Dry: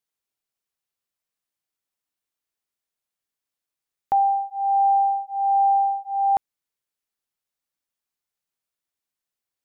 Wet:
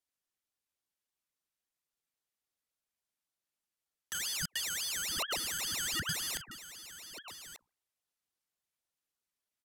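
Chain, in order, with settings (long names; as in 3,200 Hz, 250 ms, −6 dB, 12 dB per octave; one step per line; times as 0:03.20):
Chebyshev high-pass filter 520 Hz, order 2
mains-hum notches 60/120/180/240/300/360/420/480/540 Hz
comb filter 2.8 ms, depth 54%
brickwall limiter −19.5 dBFS, peak gain reduction 7.5 dB
speech leveller 2 s
wrap-around overflow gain 26.5 dB
single-tap delay 1,189 ms −13 dB
downsampling to 32,000 Hz
0:04.17–0:05.09: Butterworth band-reject 810 Hz, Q 2.1
ring modulator whose carrier an LFO sweeps 1,500 Hz, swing 70%, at 3.6 Hz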